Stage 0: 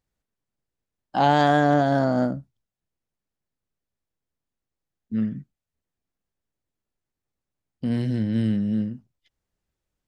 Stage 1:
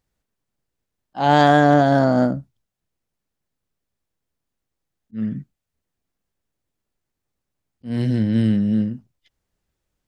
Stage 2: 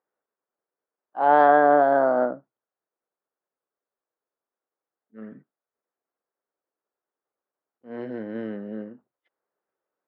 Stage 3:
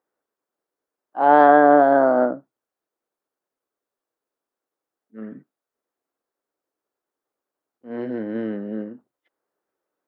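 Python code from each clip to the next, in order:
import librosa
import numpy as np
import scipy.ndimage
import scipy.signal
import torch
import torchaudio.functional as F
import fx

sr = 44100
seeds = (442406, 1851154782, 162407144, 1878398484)

y1 = fx.auto_swell(x, sr, attack_ms=199.0)
y1 = y1 * 10.0 ** (5.0 / 20.0)
y2 = scipy.signal.sosfilt(scipy.signal.cheby1(2, 1.0, [430.0, 1400.0], 'bandpass', fs=sr, output='sos'), y1)
y3 = fx.peak_eq(y2, sr, hz=290.0, db=5.0, octaves=0.69)
y3 = y3 * 10.0 ** (3.0 / 20.0)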